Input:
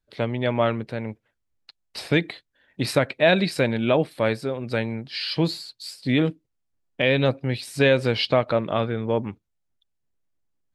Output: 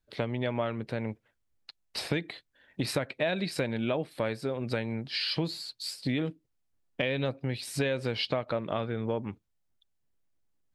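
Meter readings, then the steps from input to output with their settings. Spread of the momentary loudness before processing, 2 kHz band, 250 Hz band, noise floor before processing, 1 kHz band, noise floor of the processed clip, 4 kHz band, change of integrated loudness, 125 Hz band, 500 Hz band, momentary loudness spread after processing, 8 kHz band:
13 LU, -9.5 dB, -8.0 dB, -76 dBFS, -9.5 dB, -76 dBFS, -6.0 dB, -9.0 dB, -8.0 dB, -9.5 dB, 8 LU, -2.5 dB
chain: compression 4:1, threshold -28 dBFS, peak gain reduction 13 dB

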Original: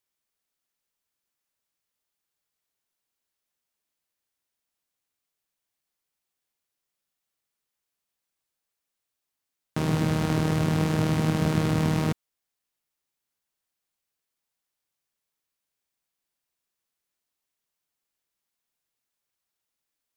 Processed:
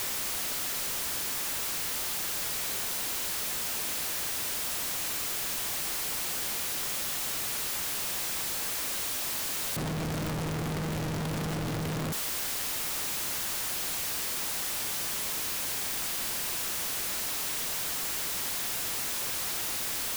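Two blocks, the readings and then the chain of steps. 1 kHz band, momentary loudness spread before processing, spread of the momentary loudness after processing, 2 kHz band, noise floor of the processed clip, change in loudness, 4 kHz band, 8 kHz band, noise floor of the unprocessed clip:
+0.5 dB, 6 LU, 2 LU, +6.0 dB, -33 dBFS, -4.5 dB, +11.5 dB, +18.0 dB, -85 dBFS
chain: one-bit comparator; trim +1.5 dB

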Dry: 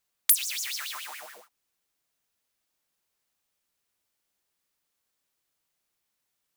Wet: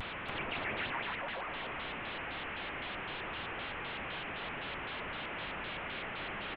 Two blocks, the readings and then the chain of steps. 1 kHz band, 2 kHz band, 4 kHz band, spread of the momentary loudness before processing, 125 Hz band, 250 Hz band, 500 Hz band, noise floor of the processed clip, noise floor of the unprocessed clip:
+11.5 dB, +7.0 dB, -2.5 dB, 17 LU, no reading, +29.5 dB, +16.5 dB, -42 dBFS, -81 dBFS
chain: one-bit delta coder 16 kbps, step -35.5 dBFS; delay 283 ms -6 dB; vibrato with a chosen wave square 3.9 Hz, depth 160 cents; trim +1 dB

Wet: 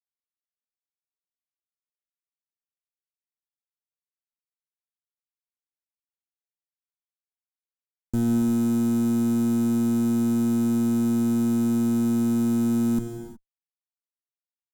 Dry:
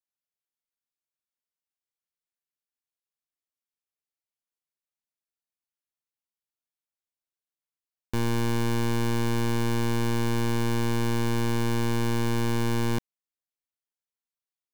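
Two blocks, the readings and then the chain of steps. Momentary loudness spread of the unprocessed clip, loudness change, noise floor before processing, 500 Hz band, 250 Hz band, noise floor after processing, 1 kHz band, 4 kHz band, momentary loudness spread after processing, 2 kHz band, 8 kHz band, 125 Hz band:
1 LU, +4.5 dB, under -85 dBFS, -2.0 dB, +8.5 dB, under -85 dBFS, -8.0 dB, under -10 dB, 2 LU, under -10 dB, 0.0 dB, -3.5 dB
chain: Chebyshev band-stop 300–7300 Hz, order 3; treble shelf 9.3 kHz -8.5 dB; companded quantiser 6-bit; gain riding; graphic EQ 250/500/2000 Hz +5/+4/-6 dB; Chebyshev shaper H 7 -24 dB, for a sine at -17 dBFS; saturation -19 dBFS, distortion -20 dB; gated-style reverb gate 390 ms flat, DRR 7 dB; trim +3.5 dB

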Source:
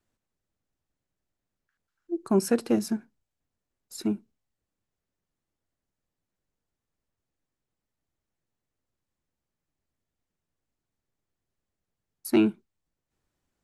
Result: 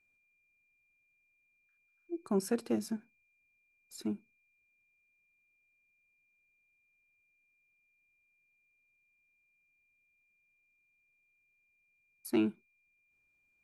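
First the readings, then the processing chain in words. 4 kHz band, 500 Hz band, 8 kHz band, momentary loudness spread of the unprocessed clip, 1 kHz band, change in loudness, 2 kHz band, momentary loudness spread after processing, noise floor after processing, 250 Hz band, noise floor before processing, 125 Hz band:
-8.5 dB, -8.5 dB, -8.5 dB, 12 LU, -8.5 dB, -8.5 dB, -8.0 dB, 12 LU, -75 dBFS, -8.5 dB, under -85 dBFS, -8.5 dB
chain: whistle 2.4 kHz -64 dBFS; trim -8.5 dB

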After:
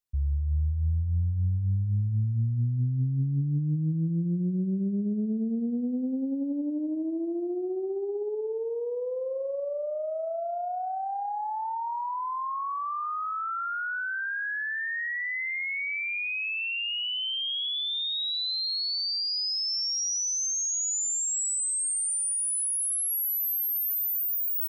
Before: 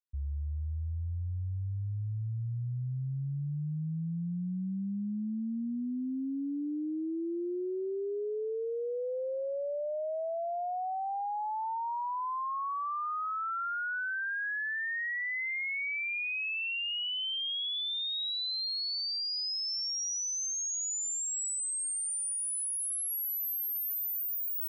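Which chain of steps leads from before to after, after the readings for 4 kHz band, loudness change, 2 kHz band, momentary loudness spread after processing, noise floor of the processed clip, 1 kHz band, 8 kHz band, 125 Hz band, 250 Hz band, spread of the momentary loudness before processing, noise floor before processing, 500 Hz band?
+4.0 dB, +5.0 dB, +3.0 dB, 7 LU, -32 dBFS, +3.0 dB, +5.5 dB, +8.0 dB, +6.0 dB, 5 LU, -34 dBFS, +3.5 dB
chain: tone controls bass +6 dB, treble +3 dB; feedback delay 187 ms, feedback 38%, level -14 dB; loudspeaker Doppler distortion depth 0.47 ms; trim +2.5 dB

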